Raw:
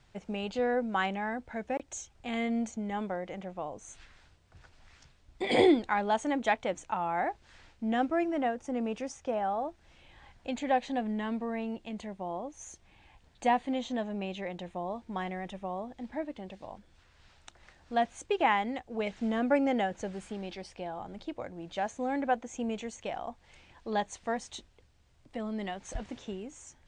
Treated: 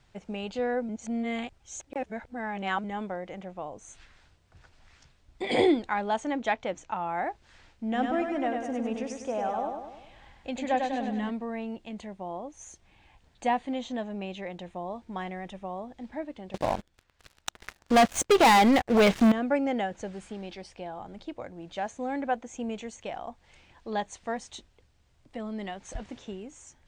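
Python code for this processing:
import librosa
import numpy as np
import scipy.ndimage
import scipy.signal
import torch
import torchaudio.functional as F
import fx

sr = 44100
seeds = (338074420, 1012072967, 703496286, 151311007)

y = fx.lowpass(x, sr, hz=7300.0, slope=24, at=(6.2, 7.08))
y = fx.echo_feedback(y, sr, ms=99, feedback_pct=52, wet_db=-4.5, at=(7.94, 11.29), fade=0.02)
y = fx.leveller(y, sr, passes=5, at=(16.54, 19.32))
y = fx.edit(y, sr, fx.reverse_span(start_s=0.89, length_s=1.95), tone=tone)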